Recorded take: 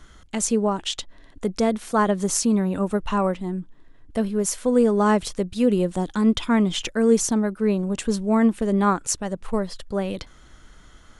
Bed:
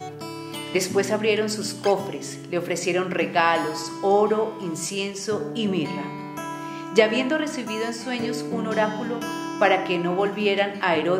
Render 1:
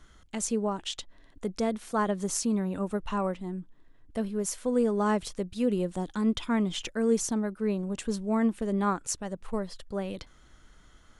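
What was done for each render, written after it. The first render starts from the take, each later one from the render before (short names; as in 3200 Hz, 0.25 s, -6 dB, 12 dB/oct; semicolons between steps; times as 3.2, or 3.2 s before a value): gain -7.5 dB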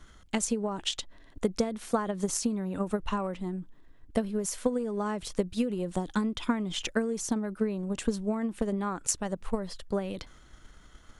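compressor 16:1, threshold -28 dBFS, peak gain reduction 10 dB; transient shaper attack +8 dB, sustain +4 dB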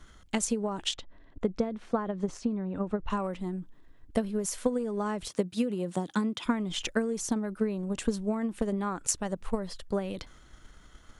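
0.94–3.1 tape spacing loss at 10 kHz 24 dB; 5.28–6.46 HPF 120 Hz 24 dB/oct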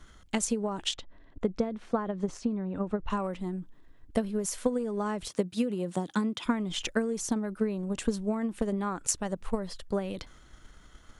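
nothing audible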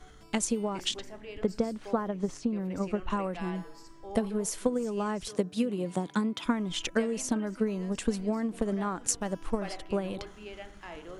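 add bed -23 dB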